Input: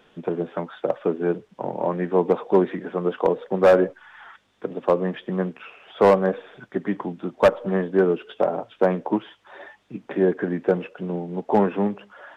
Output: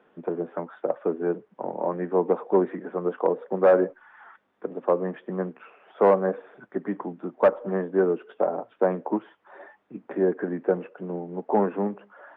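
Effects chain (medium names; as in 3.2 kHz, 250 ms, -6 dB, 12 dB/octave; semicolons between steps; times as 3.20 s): three-band isolator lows -16 dB, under 170 Hz, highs -21 dB, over 2 kHz; trim -2.5 dB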